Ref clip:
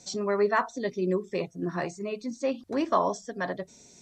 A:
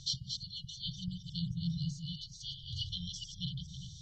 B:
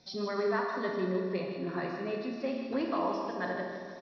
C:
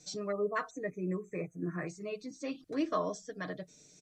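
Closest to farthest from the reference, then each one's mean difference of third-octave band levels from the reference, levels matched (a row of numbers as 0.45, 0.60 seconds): C, B, A; 3.0, 8.5, 18.5 decibels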